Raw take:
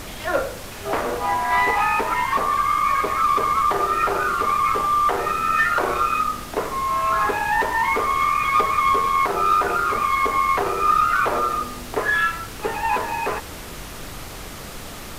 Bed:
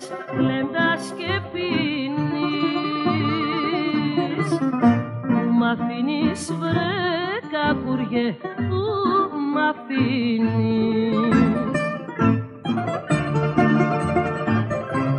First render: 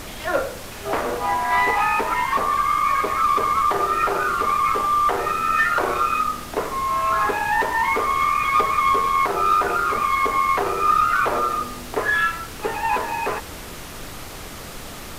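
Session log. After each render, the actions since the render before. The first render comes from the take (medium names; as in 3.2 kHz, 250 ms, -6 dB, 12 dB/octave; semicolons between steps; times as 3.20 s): de-hum 50 Hz, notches 4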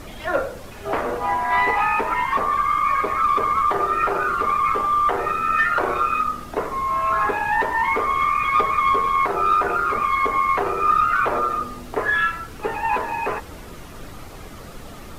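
noise reduction 9 dB, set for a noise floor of -36 dBFS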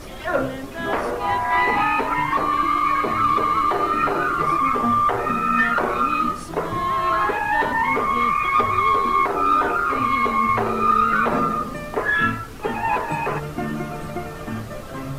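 add bed -9.5 dB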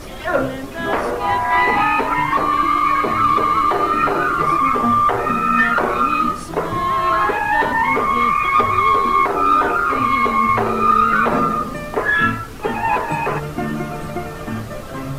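trim +3.5 dB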